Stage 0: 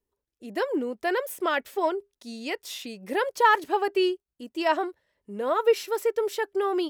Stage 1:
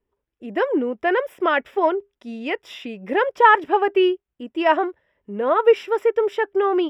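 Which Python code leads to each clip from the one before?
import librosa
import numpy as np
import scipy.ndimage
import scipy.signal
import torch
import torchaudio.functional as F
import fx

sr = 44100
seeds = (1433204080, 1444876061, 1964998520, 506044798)

y = scipy.signal.savgol_filter(x, 25, 4, mode='constant')
y = y * librosa.db_to_amplitude(6.5)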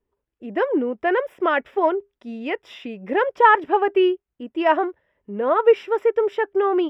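y = fx.high_shelf(x, sr, hz=4100.0, db=-9.5)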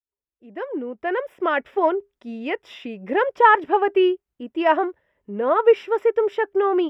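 y = fx.fade_in_head(x, sr, length_s=1.78)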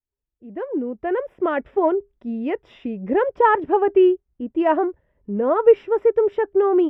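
y = fx.tilt_eq(x, sr, slope=-4.0)
y = y * librosa.db_to_amplitude(-2.5)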